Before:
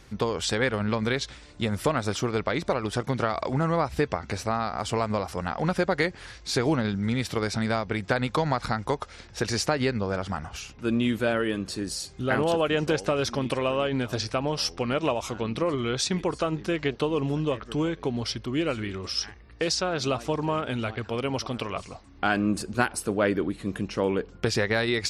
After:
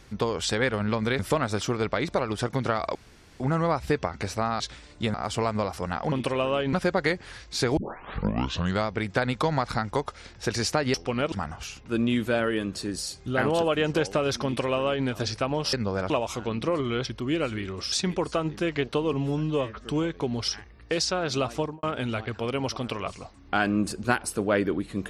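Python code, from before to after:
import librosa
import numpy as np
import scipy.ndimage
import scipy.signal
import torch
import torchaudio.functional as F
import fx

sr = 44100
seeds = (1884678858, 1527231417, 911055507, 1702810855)

y = fx.studio_fade_out(x, sr, start_s=20.28, length_s=0.25)
y = fx.edit(y, sr, fx.move(start_s=1.19, length_s=0.54, to_s=4.69),
    fx.insert_room_tone(at_s=3.49, length_s=0.45),
    fx.tape_start(start_s=6.71, length_s=1.1),
    fx.swap(start_s=9.88, length_s=0.37, other_s=14.66, other_length_s=0.38),
    fx.duplicate(start_s=13.38, length_s=0.61, to_s=5.67),
    fx.stretch_span(start_s=17.2, length_s=0.48, factor=1.5),
    fx.move(start_s=18.31, length_s=0.87, to_s=15.99), tone=tone)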